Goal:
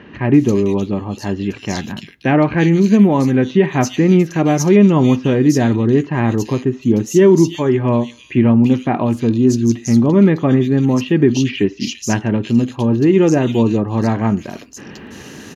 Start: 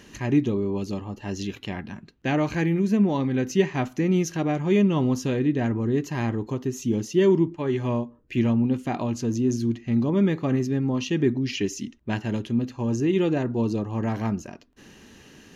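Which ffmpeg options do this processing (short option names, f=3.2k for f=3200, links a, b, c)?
-filter_complex "[0:a]highpass=80,areverse,acompressor=mode=upward:threshold=-37dB:ratio=2.5,areverse,acrossover=split=2900[a][b];[b]adelay=340[c];[a][c]amix=inputs=2:normalize=0,alimiter=level_in=11.5dB:limit=-1dB:release=50:level=0:latency=1,volume=-1dB"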